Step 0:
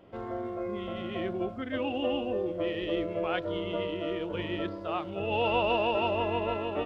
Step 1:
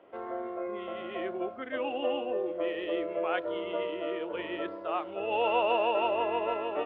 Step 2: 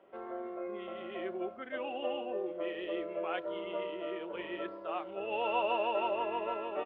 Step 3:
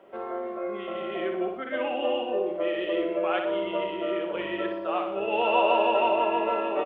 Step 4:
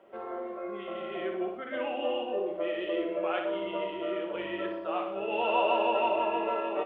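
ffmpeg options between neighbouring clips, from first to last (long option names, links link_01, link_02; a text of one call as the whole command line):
ffmpeg -i in.wav -filter_complex "[0:a]acrossover=split=320 3100:gain=0.0794 1 0.0708[link_01][link_02][link_03];[link_01][link_02][link_03]amix=inputs=3:normalize=0,volume=1.5dB" out.wav
ffmpeg -i in.wav -af "aecho=1:1:5.2:0.35,volume=-5dB" out.wav
ffmpeg -i in.wav -af "aecho=1:1:60|120|180|240|300|360:0.501|0.256|0.13|0.0665|0.0339|0.0173,volume=8dB" out.wav
ffmpeg -i in.wav -af "flanger=delay=8.6:depth=7.6:regen=-63:speed=0.68:shape=sinusoidal" out.wav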